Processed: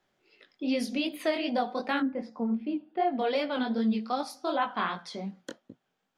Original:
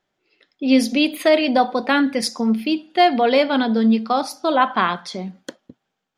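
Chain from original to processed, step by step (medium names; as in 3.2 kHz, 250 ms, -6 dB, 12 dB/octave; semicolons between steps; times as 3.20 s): 2.00–3.19 s: low-pass 1.1 kHz 12 dB/octave; chorus 2.6 Hz, delay 17 ms, depth 6.7 ms; three bands compressed up and down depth 40%; trim -8.5 dB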